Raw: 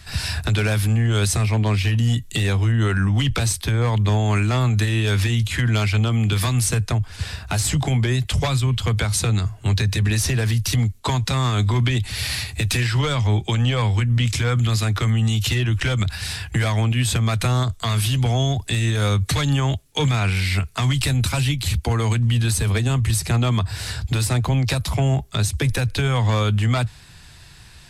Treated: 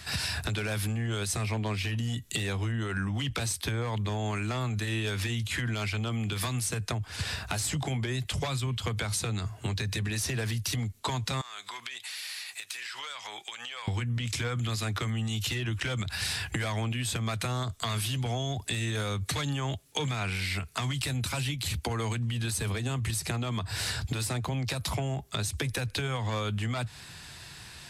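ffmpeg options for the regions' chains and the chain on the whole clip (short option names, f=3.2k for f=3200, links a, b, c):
-filter_complex "[0:a]asettb=1/sr,asplit=3[a][b][c];[a]atrim=end=11.414[d];[b]atrim=start=11.41:end=13.88,asetpts=PTS-STARTPTS,afade=t=in:d=0.004:c=qsin,afade=t=out:st=2.466:d=0.004:c=qsin,highpass=1.1k,acompressor=threshold=-37dB:ratio=8:attack=3.2:release=140:knee=1:detection=peak[e];[c]atrim=start=13.876[f];[d][e]acrossfade=d=0.004:c1=hsin:c2=qsin[g];[g][f]acrossfade=d=0.004:c1=qsin:c2=hsin,highpass=f=170:p=1,alimiter=limit=-17dB:level=0:latency=1:release=239,acompressor=threshold=-30dB:ratio=5,volume=1.5dB"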